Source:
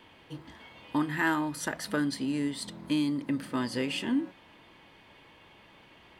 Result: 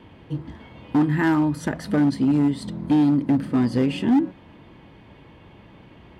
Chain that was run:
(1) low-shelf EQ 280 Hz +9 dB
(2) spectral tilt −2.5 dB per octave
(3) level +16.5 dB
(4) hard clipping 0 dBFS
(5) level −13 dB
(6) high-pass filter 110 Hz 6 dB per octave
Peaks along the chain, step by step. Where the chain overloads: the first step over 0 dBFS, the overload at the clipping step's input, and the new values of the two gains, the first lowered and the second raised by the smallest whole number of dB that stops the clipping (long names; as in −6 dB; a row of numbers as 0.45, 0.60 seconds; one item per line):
−13.0, −9.0, +7.5, 0.0, −13.0, −10.5 dBFS
step 3, 7.5 dB
step 3 +8.5 dB, step 5 −5 dB